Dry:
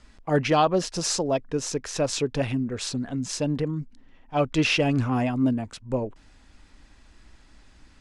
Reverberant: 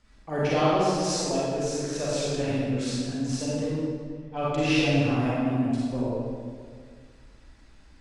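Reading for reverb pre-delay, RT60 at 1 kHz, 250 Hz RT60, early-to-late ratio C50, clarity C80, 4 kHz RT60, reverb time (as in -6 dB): 33 ms, 1.8 s, 2.2 s, -5.0 dB, -2.0 dB, 1.3 s, 1.9 s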